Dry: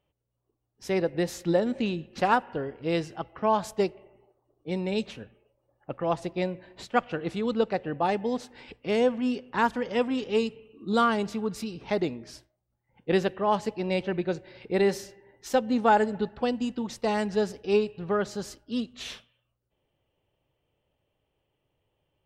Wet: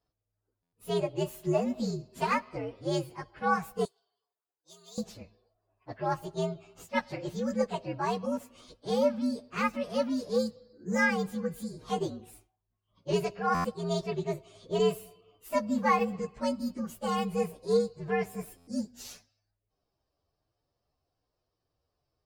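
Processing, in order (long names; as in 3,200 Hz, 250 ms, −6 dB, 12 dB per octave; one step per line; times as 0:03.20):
partials spread apart or drawn together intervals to 121%
0:03.85–0:04.98: first difference
buffer that repeats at 0:00.62/0:13.54/0:18.57, samples 512, times 8
level −1.5 dB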